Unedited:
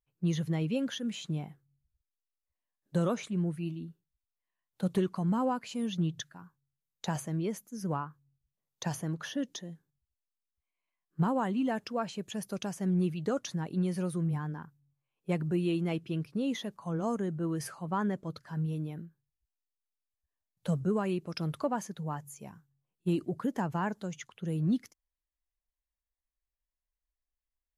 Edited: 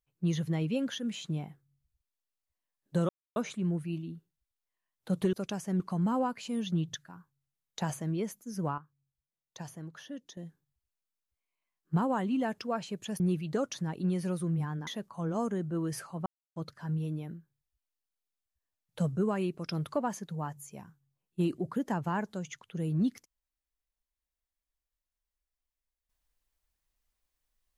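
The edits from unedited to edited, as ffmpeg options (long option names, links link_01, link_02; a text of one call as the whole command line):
ffmpeg -i in.wav -filter_complex "[0:a]asplit=10[link_01][link_02][link_03][link_04][link_05][link_06][link_07][link_08][link_09][link_10];[link_01]atrim=end=3.09,asetpts=PTS-STARTPTS,afade=type=out:start_time=3.086:duration=0.004:curve=hsin,apad=pad_dur=0.27[link_11];[link_02]atrim=start=3.09:end=5.062,asetpts=PTS-STARTPTS,afade=type=in:duration=0.004:curve=hsin[link_12];[link_03]atrim=start=12.458:end=12.932[link_13];[link_04]atrim=start=5.058:end=8.042[link_14];[link_05]atrim=start=8.038:end=9.632,asetpts=PTS-STARTPTS,volume=-9dB[link_15];[link_06]atrim=start=9.628:end=12.462[link_16];[link_07]atrim=start=12.928:end=14.602[link_17];[link_08]atrim=start=16.548:end=17.94,asetpts=PTS-STARTPTS,afade=type=out:start_time=1.388:duration=0.004:curve=hsin[link_18];[link_09]atrim=start=17.94:end=18.24,asetpts=PTS-STARTPTS,volume=0[link_19];[link_10]atrim=start=18.24,asetpts=PTS-STARTPTS,afade=type=in:duration=0.004:curve=hsin[link_20];[link_11][link_12]concat=n=2:v=0:a=1[link_21];[link_21][link_13]acrossfade=duration=0.004:curve1=hsin:curve2=hsin[link_22];[link_22][link_14]acrossfade=duration=0.004:curve1=hsin:curve2=hsin[link_23];[link_23][link_15]acrossfade=duration=0.004:curve1=hsin:curve2=hsin[link_24];[link_24][link_16]acrossfade=duration=0.004:curve1=hsin:curve2=hsin[link_25];[link_25][link_17]acrossfade=duration=0.004:curve1=hsin:curve2=hsin[link_26];[link_18][link_19][link_20]concat=n=3:v=0:a=1[link_27];[link_26][link_27]acrossfade=duration=0.004:curve1=hsin:curve2=hsin" out.wav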